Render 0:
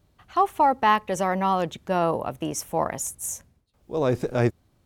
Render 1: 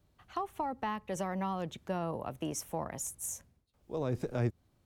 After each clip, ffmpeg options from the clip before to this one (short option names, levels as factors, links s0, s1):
-filter_complex "[0:a]acrossover=split=240[s0][s1];[s1]acompressor=threshold=0.0447:ratio=6[s2];[s0][s2]amix=inputs=2:normalize=0,volume=0.473"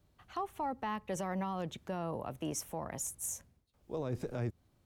-af "alimiter=level_in=1.5:limit=0.0631:level=0:latency=1:release=22,volume=0.668"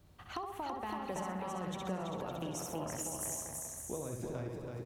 -filter_complex "[0:a]asplit=2[s0][s1];[s1]aecho=0:1:65|130|195|260:0.596|0.197|0.0649|0.0214[s2];[s0][s2]amix=inputs=2:normalize=0,acompressor=threshold=0.00631:ratio=12,asplit=2[s3][s4];[s4]aecho=0:1:330|561|722.7|835.9|915.1:0.631|0.398|0.251|0.158|0.1[s5];[s3][s5]amix=inputs=2:normalize=0,volume=2.11"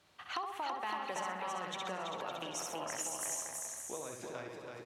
-af "bandpass=f=2600:t=q:w=0.54:csg=0,volume=2.24"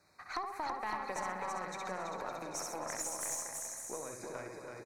-af "asuperstop=centerf=3100:order=12:qfactor=2.4,aecho=1:1:263|526|789|1052|1315:0.133|0.0787|0.0464|0.0274|0.0162,aeval=exprs='0.075*(cos(1*acos(clip(val(0)/0.075,-1,1)))-cos(1*PI/2))+0.00668*(cos(4*acos(clip(val(0)/0.075,-1,1)))-cos(4*PI/2))':c=same"